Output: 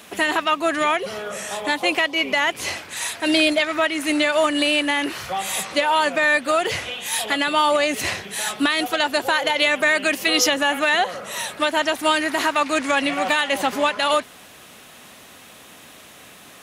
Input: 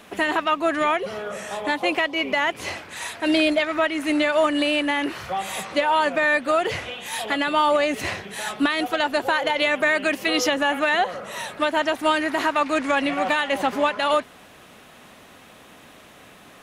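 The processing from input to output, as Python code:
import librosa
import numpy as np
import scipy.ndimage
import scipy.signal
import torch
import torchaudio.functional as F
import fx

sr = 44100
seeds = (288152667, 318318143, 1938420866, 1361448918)

y = scipy.signal.sosfilt(scipy.signal.butter(2, 41.0, 'highpass', fs=sr, output='sos'), x)
y = fx.high_shelf(y, sr, hz=3200.0, db=10.0)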